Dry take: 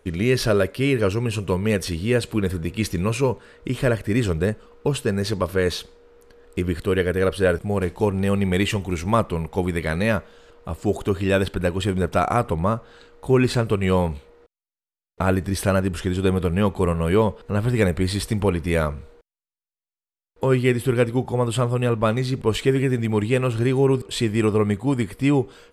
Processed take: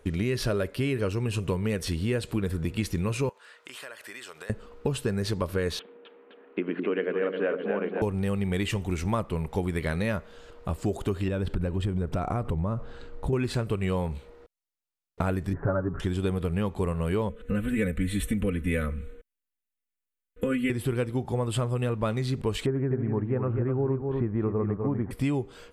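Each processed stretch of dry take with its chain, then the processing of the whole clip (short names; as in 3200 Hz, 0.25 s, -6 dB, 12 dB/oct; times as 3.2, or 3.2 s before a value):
3.29–4.5 HPF 1000 Hz + notch 2200 Hz, Q 25 + compressor 5:1, threshold -39 dBFS
5.79–8.02 elliptic band-pass 230–2800 Hz + air absorption 120 m + split-band echo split 450 Hz, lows 0.102 s, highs 0.259 s, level -6 dB
11.28–13.33 tilt -2 dB/oct + compressor 2.5:1, threshold -23 dBFS
15.53–16 steep low-pass 1600 Hz 48 dB/oct + comb 7.2 ms, depth 92% + de-hum 162 Hz, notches 9
17.29–20.7 fixed phaser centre 2100 Hz, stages 4 + comb 4 ms, depth 91%
22.66–25.11 LPF 1500 Hz 24 dB/oct + echo 0.248 s -7 dB
whole clip: low shelf 170 Hz +3.5 dB; compressor 4:1, threshold -25 dBFS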